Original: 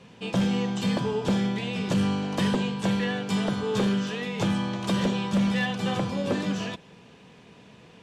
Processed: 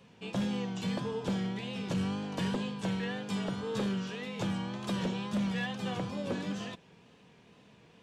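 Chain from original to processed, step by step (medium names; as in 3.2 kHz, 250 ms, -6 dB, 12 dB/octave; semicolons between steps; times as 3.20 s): wow and flutter 71 cents; trim -8 dB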